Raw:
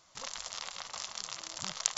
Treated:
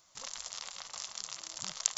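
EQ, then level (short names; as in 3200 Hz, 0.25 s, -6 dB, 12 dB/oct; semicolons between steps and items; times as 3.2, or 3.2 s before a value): high shelf 7100 Hz +12 dB; -5.0 dB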